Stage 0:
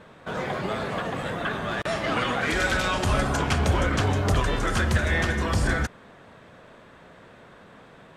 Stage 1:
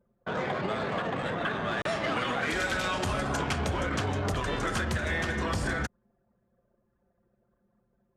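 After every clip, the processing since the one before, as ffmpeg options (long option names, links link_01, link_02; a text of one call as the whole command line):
ffmpeg -i in.wav -af "anlmdn=3.98,highpass=frequency=96:poles=1,acompressor=threshold=-26dB:ratio=6" out.wav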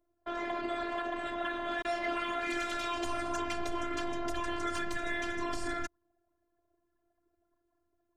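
ffmpeg -i in.wav -af "afftfilt=real='hypot(re,im)*cos(PI*b)':imag='0':win_size=512:overlap=0.75,asoftclip=type=tanh:threshold=-18.5dB" out.wav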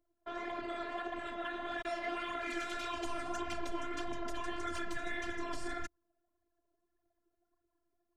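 ffmpeg -i in.wav -af "flanger=delay=0:depth=7.7:regen=31:speed=1.7:shape=triangular,volume=-1dB" out.wav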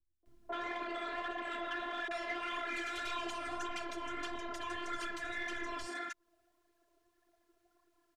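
ffmpeg -i in.wav -filter_complex "[0:a]acompressor=threshold=-44dB:ratio=6,acrossover=split=160|870[link_01][link_02][link_03];[link_02]adelay=230[link_04];[link_03]adelay=260[link_05];[link_01][link_04][link_05]amix=inputs=3:normalize=0,asplit=2[link_06][link_07];[link_07]highpass=frequency=720:poles=1,volume=9dB,asoftclip=type=tanh:threshold=-36.5dB[link_08];[link_06][link_08]amix=inputs=2:normalize=0,lowpass=frequency=6200:poles=1,volume=-6dB,volume=8.5dB" out.wav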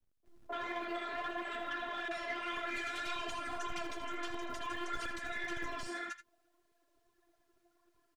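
ffmpeg -i in.wav -filter_complex "[0:a]flanger=delay=3.4:depth=5.9:regen=37:speed=0.58:shape=triangular,acrossover=split=200|940[link_01][link_02][link_03];[link_01]acrusher=bits=2:mode=log:mix=0:aa=0.000001[link_04];[link_03]aecho=1:1:80:0.282[link_05];[link_04][link_02][link_05]amix=inputs=3:normalize=0,volume=3.5dB" out.wav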